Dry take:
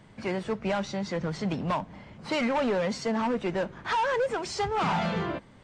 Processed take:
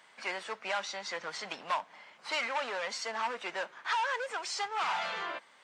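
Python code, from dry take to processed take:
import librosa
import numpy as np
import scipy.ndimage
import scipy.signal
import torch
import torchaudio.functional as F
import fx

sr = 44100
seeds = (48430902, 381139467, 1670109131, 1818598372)

p1 = scipy.signal.sosfilt(scipy.signal.butter(2, 1000.0, 'highpass', fs=sr, output='sos'), x)
p2 = fx.rider(p1, sr, range_db=4, speed_s=0.5)
p3 = p1 + F.gain(torch.from_numpy(p2), 0.5).numpy()
y = F.gain(torch.from_numpy(p3), -6.0).numpy()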